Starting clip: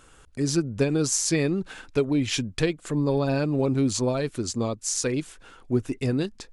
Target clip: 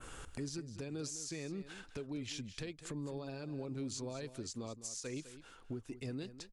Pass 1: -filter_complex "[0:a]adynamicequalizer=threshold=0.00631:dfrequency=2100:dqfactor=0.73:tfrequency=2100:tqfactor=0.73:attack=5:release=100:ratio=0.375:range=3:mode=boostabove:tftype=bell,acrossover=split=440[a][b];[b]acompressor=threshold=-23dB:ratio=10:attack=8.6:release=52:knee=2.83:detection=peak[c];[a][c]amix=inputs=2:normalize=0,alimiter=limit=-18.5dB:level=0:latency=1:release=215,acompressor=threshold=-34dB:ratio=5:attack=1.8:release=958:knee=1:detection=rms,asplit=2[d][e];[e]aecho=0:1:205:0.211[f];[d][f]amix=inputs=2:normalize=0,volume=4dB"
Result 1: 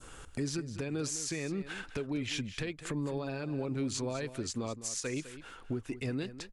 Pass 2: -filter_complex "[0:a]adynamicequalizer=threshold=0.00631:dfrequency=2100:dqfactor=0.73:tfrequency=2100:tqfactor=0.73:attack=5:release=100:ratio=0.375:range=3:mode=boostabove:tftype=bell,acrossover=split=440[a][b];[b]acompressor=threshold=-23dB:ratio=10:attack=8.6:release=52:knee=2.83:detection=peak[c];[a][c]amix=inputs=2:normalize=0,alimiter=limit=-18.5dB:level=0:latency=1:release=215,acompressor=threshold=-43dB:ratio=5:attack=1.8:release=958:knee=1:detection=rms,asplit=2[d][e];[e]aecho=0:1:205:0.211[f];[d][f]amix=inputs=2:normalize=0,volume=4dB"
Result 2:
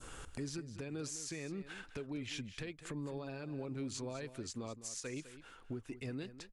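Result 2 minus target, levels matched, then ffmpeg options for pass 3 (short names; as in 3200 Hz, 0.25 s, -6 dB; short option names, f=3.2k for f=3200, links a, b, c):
2000 Hz band +3.0 dB
-filter_complex "[0:a]adynamicequalizer=threshold=0.00631:dfrequency=5100:dqfactor=0.73:tfrequency=5100:tqfactor=0.73:attack=5:release=100:ratio=0.375:range=3:mode=boostabove:tftype=bell,acrossover=split=440[a][b];[b]acompressor=threshold=-23dB:ratio=10:attack=8.6:release=52:knee=2.83:detection=peak[c];[a][c]amix=inputs=2:normalize=0,alimiter=limit=-18.5dB:level=0:latency=1:release=215,acompressor=threshold=-43dB:ratio=5:attack=1.8:release=958:knee=1:detection=rms,asplit=2[d][e];[e]aecho=0:1:205:0.211[f];[d][f]amix=inputs=2:normalize=0,volume=4dB"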